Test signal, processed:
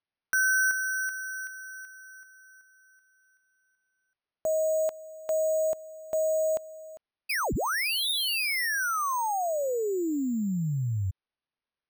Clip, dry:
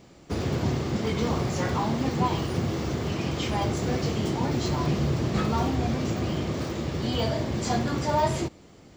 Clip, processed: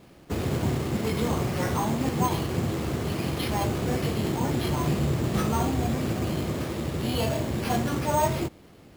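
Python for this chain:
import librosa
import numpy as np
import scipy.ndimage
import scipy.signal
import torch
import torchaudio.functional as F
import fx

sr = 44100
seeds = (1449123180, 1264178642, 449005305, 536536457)

y = np.repeat(x[::6], 6)[:len(x)]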